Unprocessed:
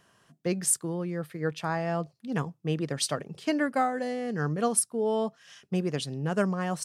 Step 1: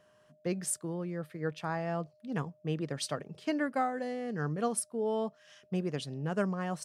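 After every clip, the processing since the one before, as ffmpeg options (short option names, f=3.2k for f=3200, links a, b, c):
-af "aeval=exprs='val(0)+0.00112*sin(2*PI*610*n/s)':c=same,highshelf=f=4.7k:g=-5.5,volume=-4.5dB"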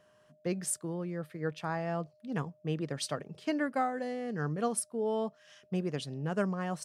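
-af anull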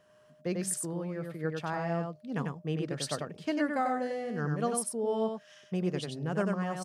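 -af "aecho=1:1:95:0.631"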